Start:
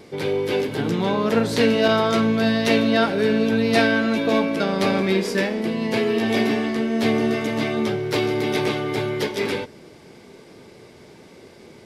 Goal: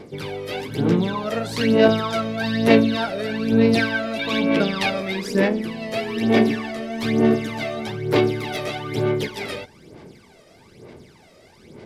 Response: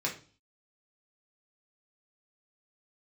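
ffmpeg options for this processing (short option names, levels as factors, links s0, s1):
-filter_complex "[0:a]aphaser=in_gain=1:out_gain=1:delay=1.6:decay=0.7:speed=1.1:type=sinusoidal,asettb=1/sr,asplit=3[s0][s1][s2];[s0]atrim=end=4.194[s3];[s1]atrim=start=4.19:end=4.9,asetpts=PTS-STARTPTS,afade=t=in:d=0.004:c=qsin,afade=t=out:st=0.706:d=0.004:c=qsin,equalizer=f=2900:t=o:w=1.4:g=9[s4];[s2]atrim=start=4.896[s5];[s3][s4]acrossfade=d=0.004:c1=hsin:c2=qsin[s6];[s6][s5]acrossfade=d=0.004:c1=qsin:c2=hsin,volume=0.562"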